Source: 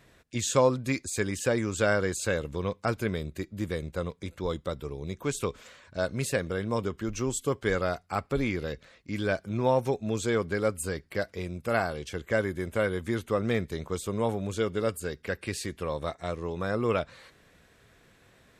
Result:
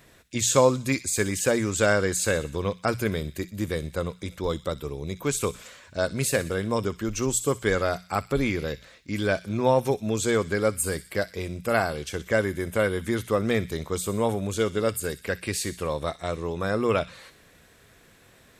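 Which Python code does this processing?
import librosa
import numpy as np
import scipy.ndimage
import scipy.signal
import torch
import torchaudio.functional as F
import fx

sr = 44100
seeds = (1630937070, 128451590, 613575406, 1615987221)

p1 = fx.high_shelf(x, sr, hz=8000.0, db=9.0)
p2 = fx.hum_notches(p1, sr, base_hz=60, count=3)
p3 = p2 + fx.echo_wet_highpass(p2, sr, ms=62, feedback_pct=54, hz=2600.0, wet_db=-12.0, dry=0)
y = p3 * 10.0 ** (3.5 / 20.0)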